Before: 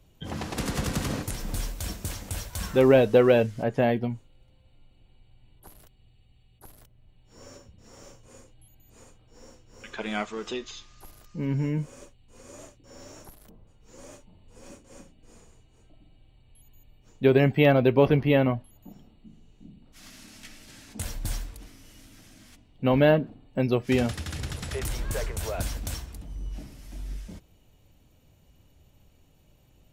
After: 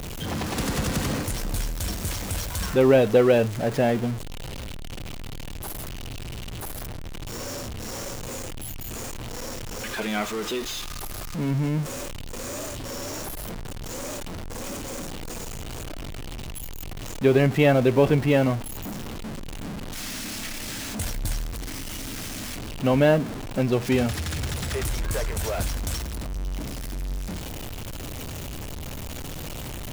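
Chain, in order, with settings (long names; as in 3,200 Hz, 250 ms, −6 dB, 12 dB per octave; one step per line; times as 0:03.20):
converter with a step at zero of −28.5 dBFS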